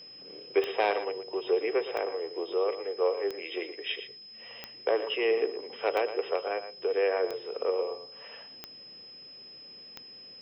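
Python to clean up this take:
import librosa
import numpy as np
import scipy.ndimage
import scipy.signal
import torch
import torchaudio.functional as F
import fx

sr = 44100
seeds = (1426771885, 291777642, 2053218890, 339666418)

y = fx.fix_declick_ar(x, sr, threshold=10.0)
y = fx.notch(y, sr, hz=5100.0, q=30.0)
y = fx.fix_echo_inverse(y, sr, delay_ms=116, level_db=-11.5)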